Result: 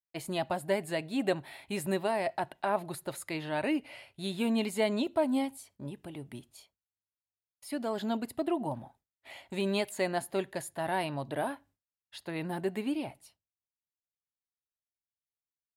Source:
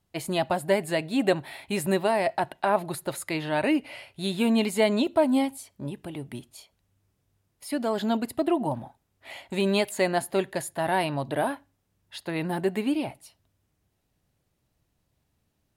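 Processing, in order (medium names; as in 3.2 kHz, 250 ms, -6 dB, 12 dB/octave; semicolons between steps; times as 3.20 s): expander -50 dBFS; trim -6.5 dB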